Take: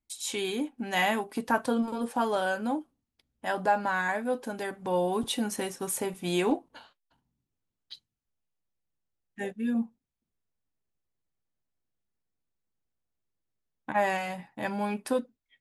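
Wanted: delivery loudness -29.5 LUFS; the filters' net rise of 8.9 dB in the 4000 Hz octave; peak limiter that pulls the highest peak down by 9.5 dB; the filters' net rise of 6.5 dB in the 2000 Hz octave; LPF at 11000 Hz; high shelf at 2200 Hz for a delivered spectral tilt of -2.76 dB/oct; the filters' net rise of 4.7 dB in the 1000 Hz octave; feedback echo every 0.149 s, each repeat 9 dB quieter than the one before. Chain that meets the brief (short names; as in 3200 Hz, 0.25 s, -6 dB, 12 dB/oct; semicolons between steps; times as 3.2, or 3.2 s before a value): LPF 11000 Hz; bell 1000 Hz +4.5 dB; bell 2000 Hz +3 dB; high shelf 2200 Hz +5 dB; bell 4000 Hz +5.5 dB; limiter -16.5 dBFS; feedback echo 0.149 s, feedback 35%, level -9 dB; gain -1 dB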